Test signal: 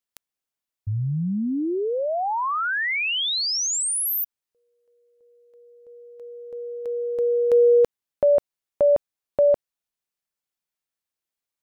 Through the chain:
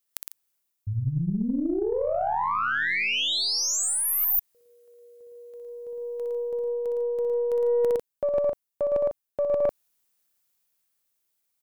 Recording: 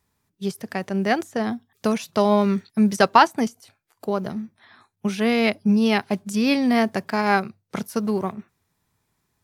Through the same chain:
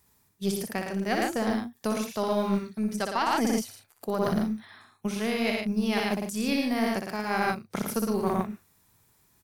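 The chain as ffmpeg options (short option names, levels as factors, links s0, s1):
-af "aecho=1:1:61.22|110.8|148.7:0.562|0.562|0.316,dynaudnorm=f=310:g=9:m=1.58,highshelf=f=7800:g=11.5,areverse,acompressor=threshold=0.0708:ratio=16:attack=9.8:release=967:knee=1:detection=rms,areverse,aeval=exprs='0.422*(cos(1*acos(clip(val(0)/0.422,-1,1)))-cos(1*PI/2))+0.075*(cos(2*acos(clip(val(0)/0.422,-1,1)))-cos(2*PI/2))+0.00237*(cos(5*acos(clip(val(0)/0.422,-1,1)))-cos(5*PI/2))+0.00596*(cos(7*acos(clip(val(0)/0.422,-1,1)))-cos(7*PI/2))+0.0168*(cos(8*acos(clip(val(0)/0.422,-1,1)))-cos(8*PI/2))':c=same,volume=1.41"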